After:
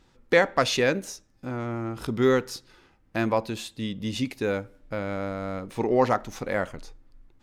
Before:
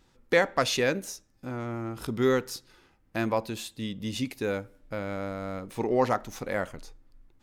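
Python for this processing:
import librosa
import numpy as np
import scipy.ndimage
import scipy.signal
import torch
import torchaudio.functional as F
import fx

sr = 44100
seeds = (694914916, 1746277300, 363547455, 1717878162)

y = fx.high_shelf(x, sr, hz=10000.0, db=-10.0)
y = y * librosa.db_to_amplitude(3.0)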